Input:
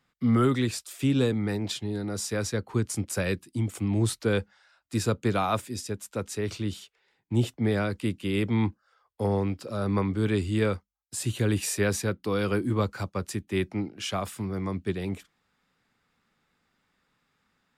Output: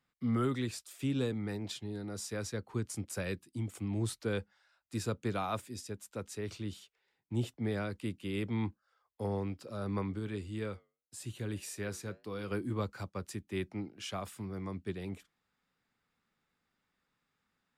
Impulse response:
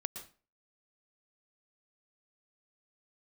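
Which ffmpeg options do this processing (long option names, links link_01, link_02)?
-filter_complex "[0:a]asplit=3[link_01][link_02][link_03];[link_01]afade=type=out:start_time=10.18:duration=0.02[link_04];[link_02]flanger=delay=8.2:depth=2.3:regen=-82:speed=1.7:shape=triangular,afade=type=in:start_time=10.18:duration=0.02,afade=type=out:start_time=12.5:duration=0.02[link_05];[link_03]afade=type=in:start_time=12.5:duration=0.02[link_06];[link_04][link_05][link_06]amix=inputs=3:normalize=0,volume=-9dB"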